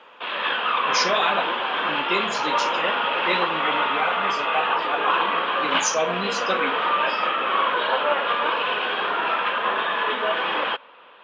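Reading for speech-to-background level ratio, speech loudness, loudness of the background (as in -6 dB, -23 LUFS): -5.0 dB, -27.5 LUFS, -22.5 LUFS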